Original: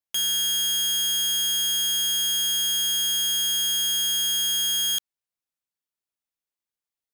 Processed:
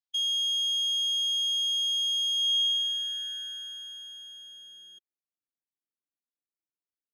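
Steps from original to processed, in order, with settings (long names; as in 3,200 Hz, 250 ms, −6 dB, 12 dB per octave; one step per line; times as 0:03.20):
expanding power law on the bin magnitudes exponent 1.6
band-pass filter sweep 4,000 Hz → 290 Hz, 0:02.35–0:05.25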